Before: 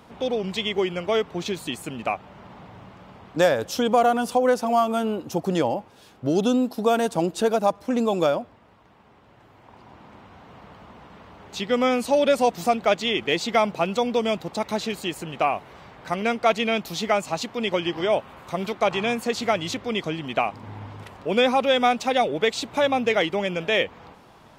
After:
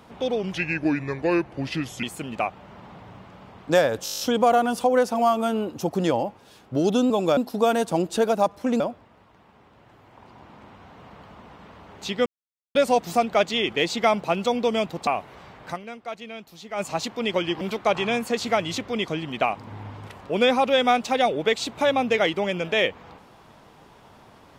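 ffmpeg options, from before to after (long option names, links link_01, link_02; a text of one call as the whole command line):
ffmpeg -i in.wav -filter_complex "[0:a]asplit=20[link_01][link_02][link_03][link_04][link_05][link_06][link_07][link_08][link_09][link_10][link_11][link_12][link_13][link_14][link_15][link_16][link_17][link_18][link_19][link_20];[link_01]atrim=end=0.534[link_21];[link_02]atrim=start=0.53:end=1.7,asetpts=PTS-STARTPTS,asetrate=34398,aresample=44100[link_22];[link_03]atrim=start=1.696:end=3.732[link_23];[link_04]atrim=start=3.708:end=3.732[link_24];[link_05]atrim=start=3.708:end=3.732[link_25];[link_06]atrim=start=3.708:end=3.732[link_26];[link_07]atrim=start=3.708:end=3.732[link_27];[link_08]atrim=start=3.708:end=3.732[link_28];[link_09]atrim=start=3.708:end=3.732[link_29];[link_10]atrim=start=3.708:end=3.732[link_30];[link_11]atrim=start=3.708:end=6.612[link_31];[link_12]atrim=start=8.038:end=8.312[link_32];[link_13]atrim=start=6.608:end=8.042[link_33];[link_14]atrim=start=8.308:end=11.77,asetpts=PTS-STARTPTS,afade=type=out:start_time=3.458:duration=0.004:curve=hsin[link_34];[link_15]atrim=start=11.77:end=12.26,asetpts=PTS-STARTPTS,volume=0[link_35];[link_16]atrim=start=12.26:end=14.582,asetpts=PTS-STARTPTS,afade=type=in:duration=0.004:curve=hsin[link_36];[link_17]atrim=start=15.448:end=16.45,asetpts=PTS-STARTPTS,afade=type=out:start_time=0.652:duration=0.35:curve=exp:silence=0.188365[link_37];[link_18]atrim=start=16.45:end=16.84,asetpts=PTS-STARTPTS,volume=-14.5dB[link_38];[link_19]atrim=start=16.84:end=17.992,asetpts=PTS-STARTPTS,afade=type=in:duration=0.35:curve=exp:silence=0.188365[link_39];[link_20]atrim=start=18.568[link_40];[link_21][link_22]acrossfade=duration=0.004:curve1=hsin:curve2=hsin[link_41];[link_41][link_23]acrossfade=duration=0.004:curve1=hsin:curve2=hsin[link_42];[link_42][link_24]acrossfade=duration=0.004:curve1=hsin:curve2=hsin[link_43];[link_43][link_25]acrossfade=duration=0.004:curve1=hsin:curve2=hsin[link_44];[link_44][link_26]acrossfade=duration=0.004:curve1=hsin:curve2=hsin[link_45];[link_45][link_27]acrossfade=duration=0.004:curve1=hsin:curve2=hsin[link_46];[link_46][link_28]acrossfade=duration=0.004:curve1=hsin:curve2=hsin[link_47];[link_47][link_29]acrossfade=duration=0.004:curve1=hsin:curve2=hsin[link_48];[link_48][link_30]acrossfade=duration=0.004:curve1=hsin:curve2=hsin[link_49];[link_49][link_31]acrossfade=duration=0.004:curve1=hsin:curve2=hsin[link_50];[link_50][link_32]acrossfade=duration=0.004:curve1=hsin:curve2=hsin[link_51];[link_51][link_33]acrossfade=duration=0.004:curve1=hsin:curve2=hsin[link_52];[link_34][link_35][link_36]concat=n=3:v=0:a=1[link_53];[link_52][link_53]acrossfade=duration=0.004:curve1=hsin:curve2=hsin[link_54];[link_37][link_38][link_39]concat=n=3:v=0:a=1[link_55];[link_54][link_55]acrossfade=duration=0.004:curve1=hsin:curve2=hsin[link_56];[link_56][link_40]acrossfade=duration=0.004:curve1=hsin:curve2=hsin" out.wav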